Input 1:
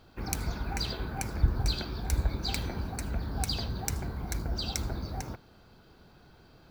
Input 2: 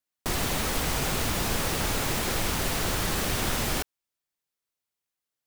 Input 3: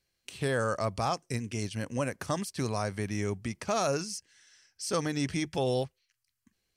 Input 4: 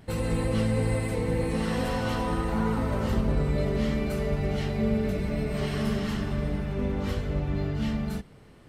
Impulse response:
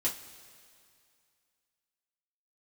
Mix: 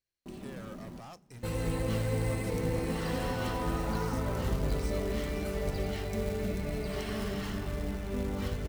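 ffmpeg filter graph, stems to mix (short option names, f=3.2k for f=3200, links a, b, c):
-filter_complex "[0:a]adelay=2250,volume=-19dB[a];[1:a]bandpass=f=190:t=q:w=1.8:csg=0,aecho=1:1:5.1:0.58,volume=-10dB,asplit=3[b][c][d];[b]atrim=end=1,asetpts=PTS-STARTPTS,afade=t=out:st=0.996:d=0.004:c=hsin[e];[c]atrim=start=1:end=2.34,asetpts=PTS-STARTPTS,volume=0[f];[d]atrim=start=2.34,asetpts=PTS-STARTPTS,afade=t=in:d=0.004:c=hsin[g];[e][f][g]concat=n=3:v=0:a=1,asplit=2[h][i];[i]volume=-6dB[j];[2:a]volume=30dB,asoftclip=hard,volume=-30dB,volume=-15dB,asplit=2[k][l];[l]volume=-20dB[m];[3:a]adelay=1350,volume=-4.5dB[n];[4:a]atrim=start_sample=2205[o];[j][m]amix=inputs=2:normalize=0[p];[p][o]afir=irnorm=-1:irlink=0[q];[a][h][k][n][q]amix=inputs=5:normalize=0,acrusher=bits=5:mode=log:mix=0:aa=0.000001,bandreject=f=73.42:t=h:w=4,bandreject=f=146.84:t=h:w=4,bandreject=f=220.26:t=h:w=4"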